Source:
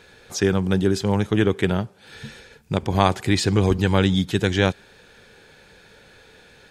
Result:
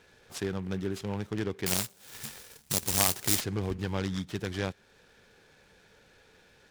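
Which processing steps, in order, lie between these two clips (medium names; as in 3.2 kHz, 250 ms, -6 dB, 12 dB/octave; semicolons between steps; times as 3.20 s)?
in parallel at -2 dB: compression, threshold -28 dBFS, peak gain reduction 16.5 dB; 1.66–3.41 s: on the sum: careless resampling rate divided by 6×, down none, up zero stuff; delay time shaken by noise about 1.7 kHz, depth 0.036 ms; trim -15 dB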